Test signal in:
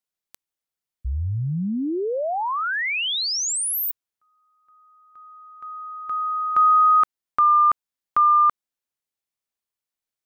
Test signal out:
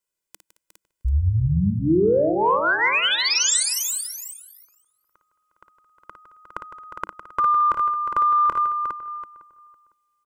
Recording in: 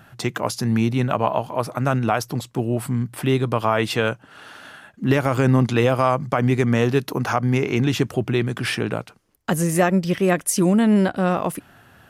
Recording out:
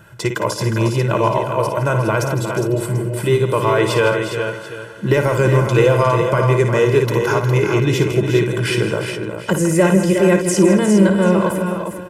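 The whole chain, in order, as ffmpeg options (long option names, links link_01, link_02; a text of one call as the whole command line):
ffmpeg -i in.wav -filter_complex "[0:a]aecho=1:1:2:0.99,asplit=2[link_01][link_02];[link_02]adelay=505,lowpass=frequency=1800:poles=1,volume=-18.5dB,asplit=2[link_03][link_04];[link_04]adelay=505,lowpass=frequency=1800:poles=1,volume=0.22[link_05];[link_03][link_05]amix=inputs=2:normalize=0[link_06];[link_01][link_06]amix=inputs=2:normalize=0,acrossover=split=7800[link_07][link_08];[link_08]acompressor=threshold=-33dB:ratio=4:attack=1:release=60[link_09];[link_07][link_09]amix=inputs=2:normalize=0,asplit=2[link_10][link_11];[link_11]aecho=0:1:56|159|219|358|409|739:0.376|0.251|0.119|0.335|0.422|0.141[link_12];[link_10][link_12]amix=inputs=2:normalize=0,asoftclip=type=tanh:threshold=-2.5dB,equalizer=frequency=200:width_type=o:width=0.33:gain=8,equalizer=frequency=315:width_type=o:width=0.33:gain=9,equalizer=frequency=4000:width_type=o:width=0.33:gain=-4,equalizer=frequency=8000:width_type=o:width=0.33:gain=5" out.wav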